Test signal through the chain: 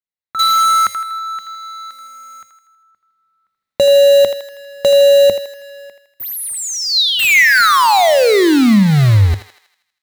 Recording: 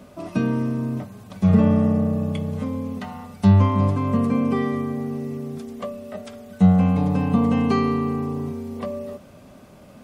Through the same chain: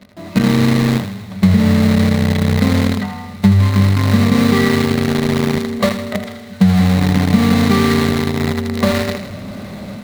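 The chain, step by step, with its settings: level rider gain up to 16 dB; treble shelf 3.4 kHz -10.5 dB; in parallel at -7 dB: companded quantiser 2-bit; on the sum: graphic EQ with 31 bands 100 Hz +10 dB, 200 Hz +9 dB, 2 kHz +9 dB, 4 kHz +10 dB; compression 10:1, threshold -1 dBFS; on a send: thinning echo 80 ms, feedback 55%, high-pass 600 Hz, level -8 dB; on the sum: trim -6 dB

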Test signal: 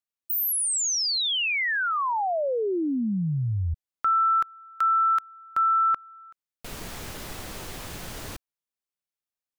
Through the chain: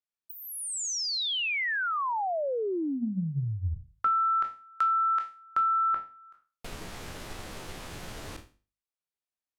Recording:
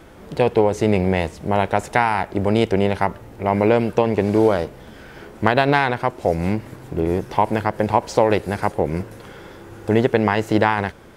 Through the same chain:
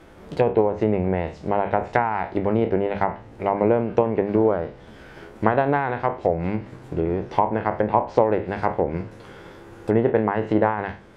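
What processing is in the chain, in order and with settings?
spectral sustain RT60 0.35 s; hum notches 50/100/150/200/250 Hz; transient shaper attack +3 dB, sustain -1 dB; treble shelf 5.6 kHz -5.5 dB; low-pass that closes with the level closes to 1.4 kHz, closed at -12.5 dBFS; trim -4 dB

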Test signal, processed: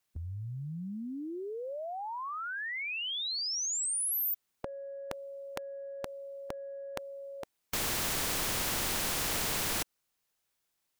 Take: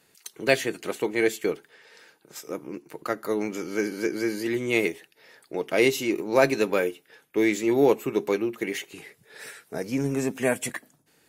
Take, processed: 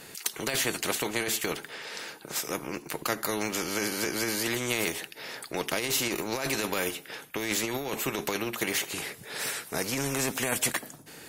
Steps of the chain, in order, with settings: compressor with a negative ratio -25 dBFS, ratio -1; spectrum-flattening compressor 2:1; trim -1.5 dB

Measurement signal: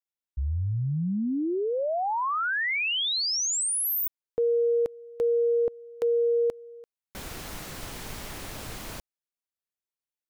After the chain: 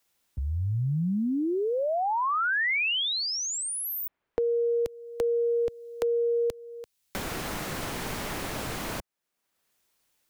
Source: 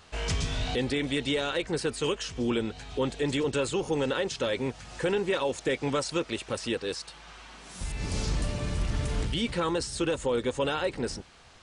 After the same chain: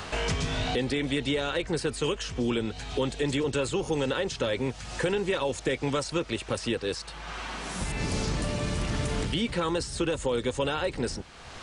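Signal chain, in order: three bands compressed up and down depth 70%

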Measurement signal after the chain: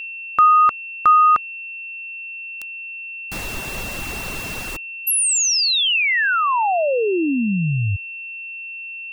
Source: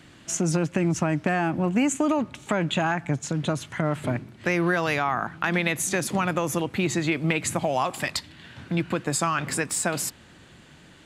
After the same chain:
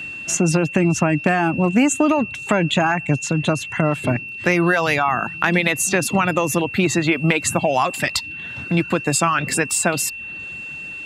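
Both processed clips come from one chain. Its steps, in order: whistle 2.7 kHz -35 dBFS; reverb removal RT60 0.53 s; trim +7 dB

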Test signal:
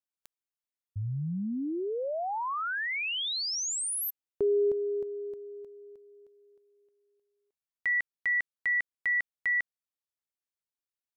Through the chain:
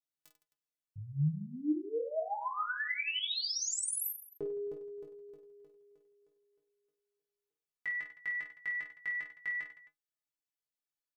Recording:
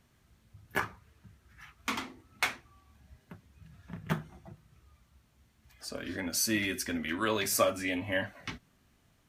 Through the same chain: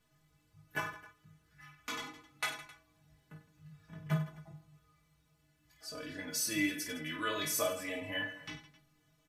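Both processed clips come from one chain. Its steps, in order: inharmonic resonator 150 Hz, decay 0.21 s, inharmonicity 0.008; reverse bouncing-ball echo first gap 20 ms, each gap 1.5×, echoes 5; trim +4 dB

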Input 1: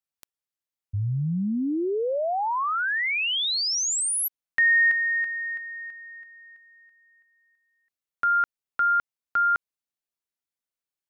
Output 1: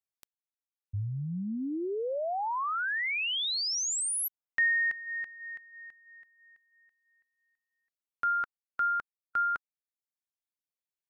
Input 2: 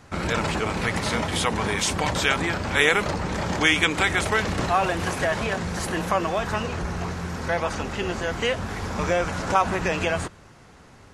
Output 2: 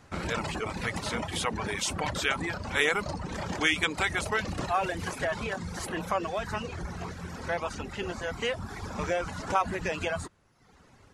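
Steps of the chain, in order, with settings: reverb removal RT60 0.91 s; trim -5.5 dB

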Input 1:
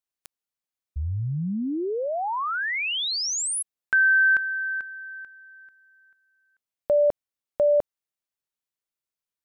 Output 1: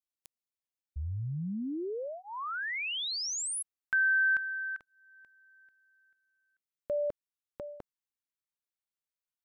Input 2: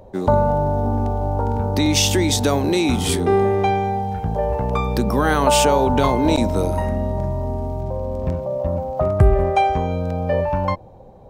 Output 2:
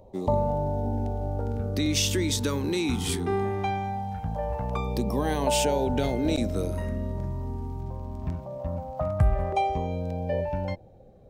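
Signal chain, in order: LFO notch saw down 0.21 Hz 340–1600 Hz; trim -7.5 dB

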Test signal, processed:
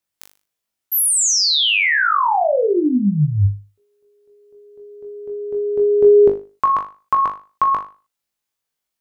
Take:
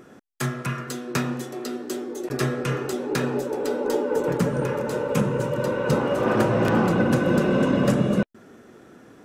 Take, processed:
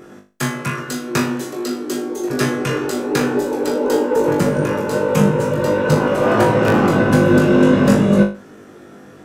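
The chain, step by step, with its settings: flutter echo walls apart 3.4 m, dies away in 0.33 s; trim +5 dB

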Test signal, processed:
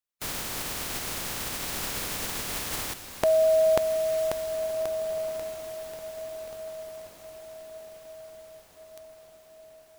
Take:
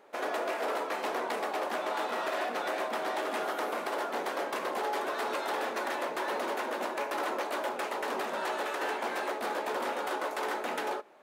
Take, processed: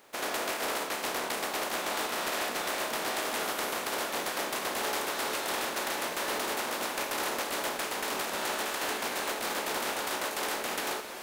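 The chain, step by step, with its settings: spectral contrast reduction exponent 0.5; echo that smears into a reverb 1584 ms, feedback 50%, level -9.5 dB

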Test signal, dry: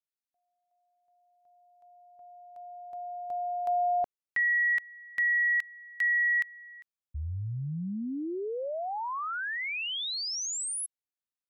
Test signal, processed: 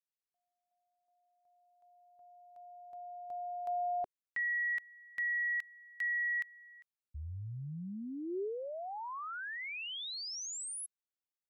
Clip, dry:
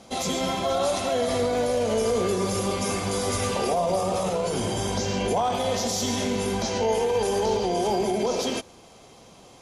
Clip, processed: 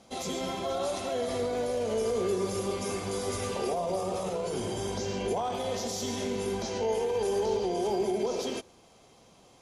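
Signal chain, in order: dynamic bell 390 Hz, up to +6 dB, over -42 dBFS, Q 3; trim -8 dB

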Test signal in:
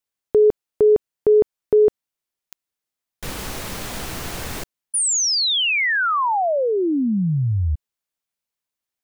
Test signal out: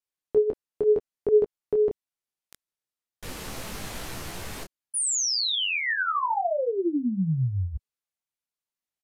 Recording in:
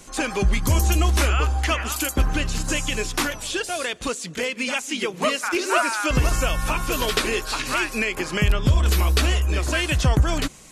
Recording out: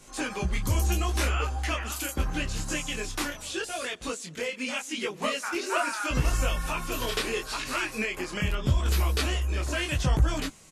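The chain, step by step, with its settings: resampled via 32 kHz; detune thickener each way 27 cents; trim -3 dB

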